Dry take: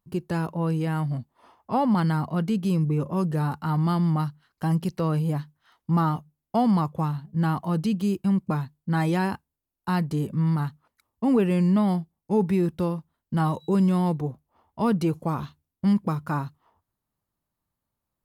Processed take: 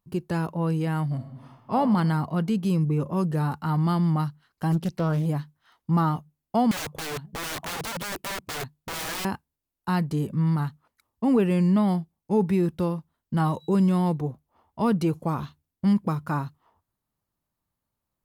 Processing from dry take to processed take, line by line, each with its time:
0:01.14–0:01.75: thrown reverb, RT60 1.3 s, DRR 4 dB
0:04.72–0:05.26: highs frequency-modulated by the lows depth 0.53 ms
0:06.71–0:09.25: wrap-around overflow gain 27.5 dB

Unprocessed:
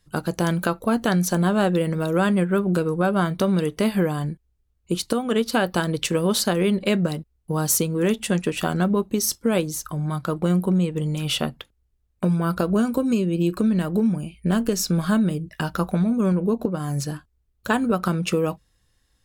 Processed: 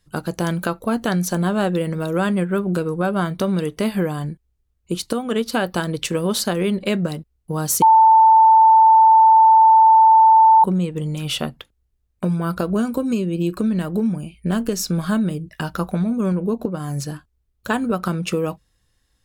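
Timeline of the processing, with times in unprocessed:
0:07.82–0:10.64: beep over 888 Hz −7.5 dBFS

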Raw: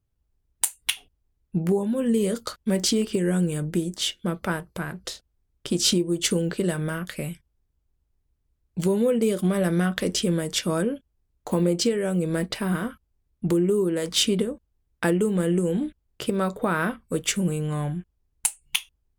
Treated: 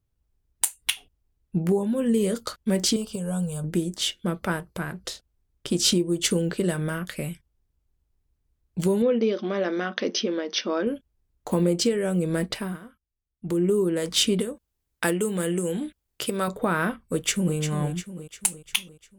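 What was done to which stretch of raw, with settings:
0:02.96–0:03.64: phaser with its sweep stopped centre 800 Hz, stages 4
0:09.02–0:10.87: linear-phase brick-wall band-pass 200–6,300 Hz
0:12.53–0:13.65: duck −15.5 dB, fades 0.26 s
0:14.40–0:16.48: spectral tilt +2 dB per octave
0:17.00–0:17.57: delay throw 350 ms, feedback 55%, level −9 dB

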